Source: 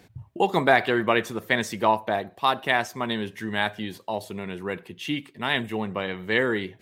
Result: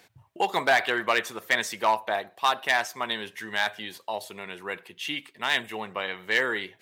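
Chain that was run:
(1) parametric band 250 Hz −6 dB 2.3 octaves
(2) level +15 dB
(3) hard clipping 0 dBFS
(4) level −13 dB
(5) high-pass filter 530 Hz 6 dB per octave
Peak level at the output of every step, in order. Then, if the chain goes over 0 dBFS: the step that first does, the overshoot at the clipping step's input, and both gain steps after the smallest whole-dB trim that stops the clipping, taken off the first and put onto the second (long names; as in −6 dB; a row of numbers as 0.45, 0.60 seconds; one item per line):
−5.5, +9.5, 0.0, −13.0, −10.0 dBFS
step 2, 9.5 dB
step 2 +5 dB, step 4 −3 dB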